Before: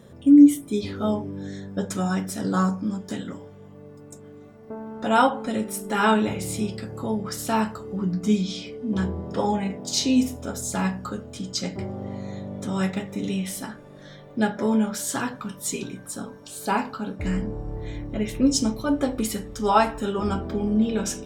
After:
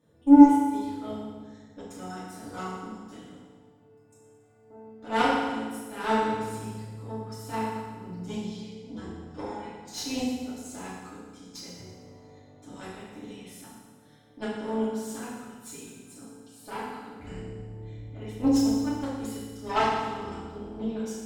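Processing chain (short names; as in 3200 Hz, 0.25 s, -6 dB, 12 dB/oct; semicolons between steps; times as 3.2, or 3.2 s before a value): added harmonics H 2 -15 dB, 3 -12 dB, 7 -39 dB, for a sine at -4.5 dBFS; FDN reverb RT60 1.4 s, low-frequency decay 1.3×, high-frequency decay 0.9×, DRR -9 dB; gain -8 dB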